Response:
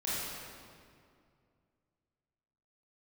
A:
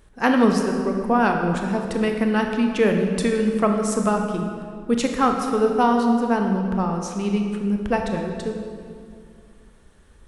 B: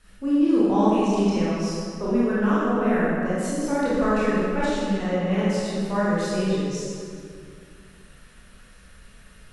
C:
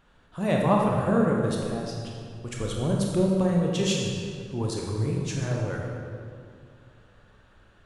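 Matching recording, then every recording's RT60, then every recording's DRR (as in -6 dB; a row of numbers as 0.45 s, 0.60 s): B; 2.3 s, 2.3 s, 2.3 s; 3.0 dB, -9.5 dB, -1.5 dB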